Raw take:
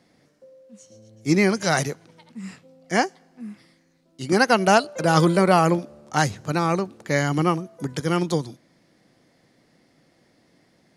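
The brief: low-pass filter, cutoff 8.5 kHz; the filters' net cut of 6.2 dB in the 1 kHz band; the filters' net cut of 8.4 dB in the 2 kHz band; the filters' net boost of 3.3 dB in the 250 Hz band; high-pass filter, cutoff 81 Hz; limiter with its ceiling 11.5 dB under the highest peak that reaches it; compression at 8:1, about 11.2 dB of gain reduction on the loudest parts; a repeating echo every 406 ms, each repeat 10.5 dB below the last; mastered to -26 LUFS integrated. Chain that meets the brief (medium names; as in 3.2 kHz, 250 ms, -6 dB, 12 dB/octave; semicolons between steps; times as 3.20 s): high-pass 81 Hz; low-pass 8.5 kHz; peaking EQ 250 Hz +6 dB; peaking EQ 1 kHz -7.5 dB; peaking EQ 2 kHz -8.5 dB; compression 8:1, threshold -23 dBFS; peak limiter -24.5 dBFS; feedback delay 406 ms, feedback 30%, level -10.5 dB; trim +9 dB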